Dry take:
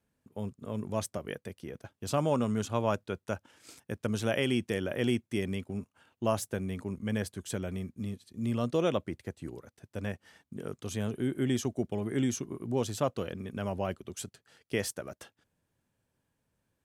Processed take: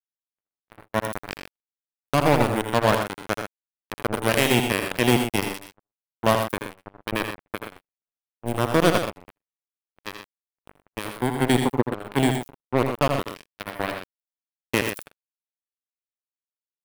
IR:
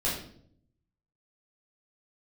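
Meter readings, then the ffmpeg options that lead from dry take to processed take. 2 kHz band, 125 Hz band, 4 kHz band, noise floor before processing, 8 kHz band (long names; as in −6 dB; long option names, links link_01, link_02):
+13.0 dB, +6.0 dB, +11.5 dB, −82 dBFS, +6.5 dB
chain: -filter_complex "[0:a]highpass=54,acrossover=split=2200[link_01][link_02];[link_02]aeval=exprs='sgn(val(0))*max(abs(val(0))-0.00211,0)':channel_layout=same[link_03];[link_01][link_03]amix=inputs=2:normalize=0,acrusher=bits=3:mix=0:aa=0.5,asplit=2[link_04][link_05];[link_05]aecho=0:1:80|87|124:0.422|0.211|0.355[link_06];[link_04][link_06]amix=inputs=2:normalize=0,aexciter=amount=1.5:drive=9.9:freq=9100,agate=range=-41dB:threshold=-52dB:ratio=16:detection=peak,volume=8.5dB"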